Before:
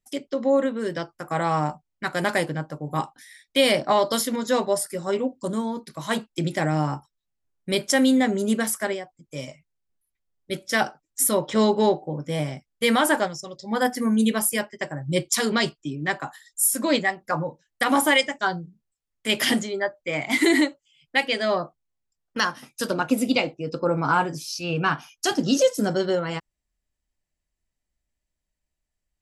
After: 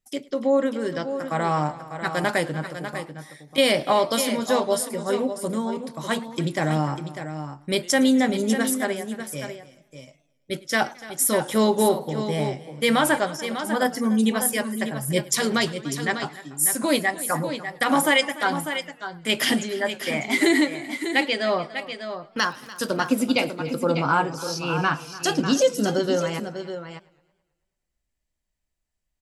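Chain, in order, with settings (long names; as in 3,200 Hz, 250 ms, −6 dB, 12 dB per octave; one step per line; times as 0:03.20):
0:02.63–0:03.58: downward compressor, threshold −34 dBFS, peak gain reduction 13.5 dB
0:22.40–0:23.22: surface crackle 70 per second −36 dBFS
multi-tap delay 292/597 ms −18/−9.5 dB
feedback echo with a swinging delay time 109 ms, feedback 56%, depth 175 cents, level −22.5 dB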